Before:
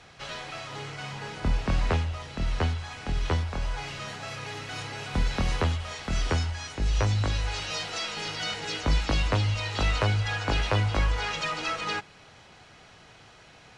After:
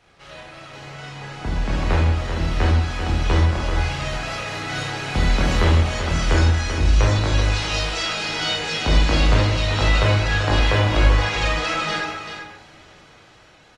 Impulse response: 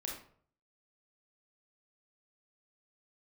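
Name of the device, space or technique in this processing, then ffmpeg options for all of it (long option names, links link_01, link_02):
speakerphone in a meeting room: -filter_complex "[0:a]aecho=1:1:387:0.398[link_01];[1:a]atrim=start_sample=2205[link_02];[link_01][link_02]afir=irnorm=-1:irlink=0,asplit=2[link_03][link_04];[link_04]adelay=130,highpass=300,lowpass=3400,asoftclip=type=hard:threshold=-20.5dB,volume=-10dB[link_05];[link_03][link_05]amix=inputs=2:normalize=0,dynaudnorm=framelen=400:gausssize=9:maxgain=10dB,volume=-1dB" -ar 48000 -c:a libopus -b:a 32k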